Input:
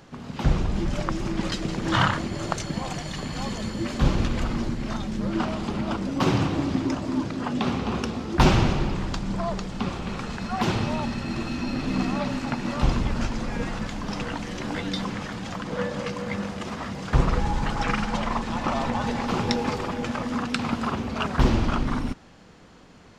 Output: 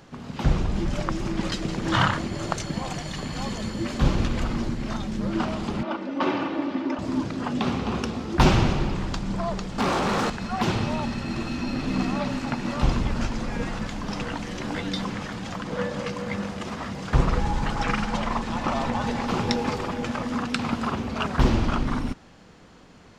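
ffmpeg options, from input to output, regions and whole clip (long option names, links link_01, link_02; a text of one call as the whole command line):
ffmpeg -i in.wav -filter_complex "[0:a]asettb=1/sr,asplit=3[link_01][link_02][link_03];[link_01]atrim=end=5.834[link_04];[link_02]atrim=start=5.83:end=6.99,asetpts=PTS-STARTPTS,afade=type=in:duration=0.004:curve=qsin,afade=type=out:start_time=1.156:duration=0.004:curve=qsin,highpass=310,lowpass=2900,aecho=1:1:3.4:0.46,atrim=end_sample=51156[link_05];[link_03]atrim=start=6.986[link_06];[link_04][link_05]acrossfade=duration=0.004:curve1=hsin:curve2=qsin[link_07];[link_07][link_06]acrossfade=duration=0.004:curve1=qsin:curve2=hsin,asettb=1/sr,asplit=3[link_08][link_09][link_10];[link_08]atrim=end=9.784[link_11];[link_09]atrim=start=9.78:end=10.3,asetpts=PTS-STARTPTS,afade=type=in:duration=0.004:curve=qsin,afade=type=out:start_time=0.516:duration=0.004:curve=qsin,equalizer=frequency=2600:width=0.89:gain=-9,asplit=2[link_12][link_13];[link_13]highpass=frequency=720:poles=1,volume=29dB,asoftclip=type=tanh:threshold=-16dB[link_14];[link_12][link_14]amix=inputs=2:normalize=0,lowpass=frequency=3700:poles=1,volume=-6dB,asplit=2[link_15][link_16];[link_16]adelay=19,volume=-11dB[link_17];[link_15][link_17]amix=inputs=2:normalize=0,atrim=end_sample=22932[link_18];[link_10]atrim=start=10.296[link_19];[link_11][link_18]acrossfade=duration=0.004:curve1=hsin:curve2=qsin[link_20];[link_20][link_19]acrossfade=duration=0.004:curve1=qsin:curve2=hsin" out.wav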